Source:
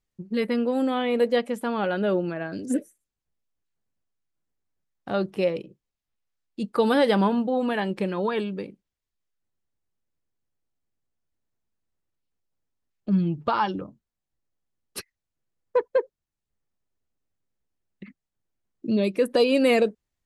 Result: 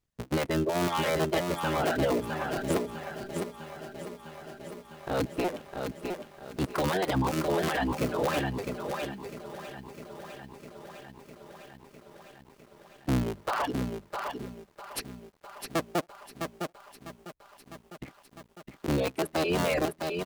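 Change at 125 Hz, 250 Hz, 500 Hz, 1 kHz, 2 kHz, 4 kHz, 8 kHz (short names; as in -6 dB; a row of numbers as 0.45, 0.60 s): +0.5 dB, -5.5 dB, -5.5 dB, -2.0 dB, -1.5 dB, -2.0 dB, n/a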